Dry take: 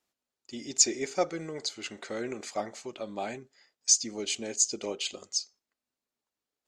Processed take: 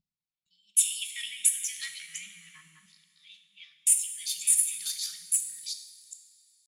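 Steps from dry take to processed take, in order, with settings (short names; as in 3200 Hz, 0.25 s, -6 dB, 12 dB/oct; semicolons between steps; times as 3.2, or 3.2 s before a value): reverse delay 0.384 s, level -1 dB; pitch shift +7 st; added harmonics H 4 -26 dB, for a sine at -6.5 dBFS; elliptic band-stop 190–2300 Hz, stop band 70 dB; LFO high-pass saw down 0.35 Hz 800–4900 Hz; upward compressor, threshold -42 dBFS; low-pass opened by the level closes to 430 Hz, open at -30 dBFS; resonant low shelf 260 Hz +13 dB, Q 3; on a send: reverb, pre-delay 3 ms, DRR 6 dB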